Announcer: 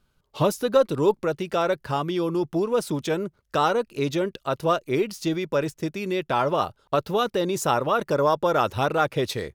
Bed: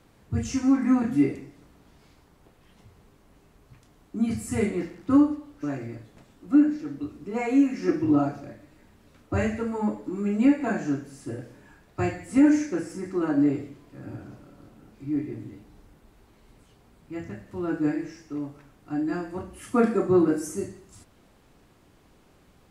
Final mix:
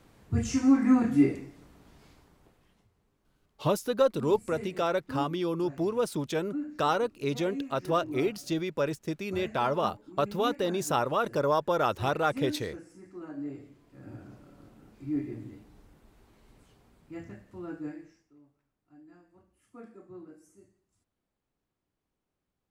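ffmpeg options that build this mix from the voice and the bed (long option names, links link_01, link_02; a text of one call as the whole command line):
ffmpeg -i stem1.wav -i stem2.wav -filter_complex "[0:a]adelay=3250,volume=-5dB[link_01];[1:a]volume=12.5dB,afade=type=out:start_time=2.07:duration=0.82:silence=0.158489,afade=type=in:start_time=13.42:duration=1.14:silence=0.223872,afade=type=out:start_time=16.66:duration=1.67:silence=0.0668344[link_02];[link_01][link_02]amix=inputs=2:normalize=0" out.wav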